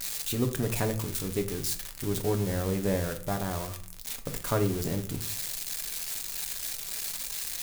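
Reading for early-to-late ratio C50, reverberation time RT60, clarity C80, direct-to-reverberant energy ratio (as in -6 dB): 12.5 dB, 0.50 s, 17.0 dB, 6.0 dB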